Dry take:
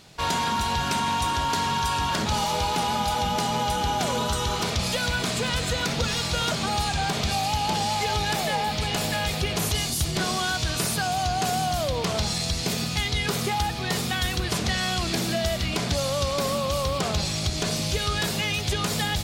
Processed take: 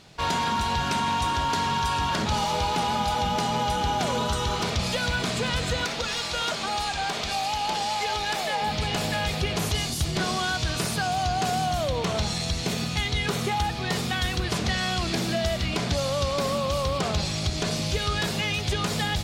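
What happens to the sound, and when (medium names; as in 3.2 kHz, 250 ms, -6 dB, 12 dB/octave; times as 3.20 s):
5.85–8.62 s: peaking EQ 110 Hz -13.5 dB 2.4 oct
11.66–13.65 s: band-stop 4.9 kHz
whole clip: treble shelf 8.8 kHz -10 dB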